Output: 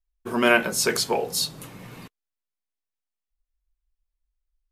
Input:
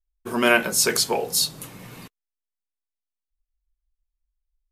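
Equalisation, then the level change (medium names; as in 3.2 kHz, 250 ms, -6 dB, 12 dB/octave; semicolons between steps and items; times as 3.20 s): treble shelf 4.8 kHz -6.5 dB; 0.0 dB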